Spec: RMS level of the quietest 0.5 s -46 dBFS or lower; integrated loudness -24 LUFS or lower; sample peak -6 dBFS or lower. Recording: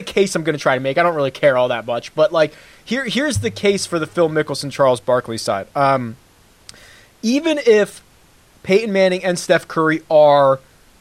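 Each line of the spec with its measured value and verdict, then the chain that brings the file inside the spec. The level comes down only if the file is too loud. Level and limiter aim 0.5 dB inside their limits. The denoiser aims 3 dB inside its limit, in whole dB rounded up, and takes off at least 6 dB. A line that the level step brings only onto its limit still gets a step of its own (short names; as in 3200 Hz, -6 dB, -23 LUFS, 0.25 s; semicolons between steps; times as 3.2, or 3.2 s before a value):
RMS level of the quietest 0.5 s -51 dBFS: OK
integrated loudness -17.0 LUFS: fail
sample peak -2.5 dBFS: fail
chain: gain -7.5 dB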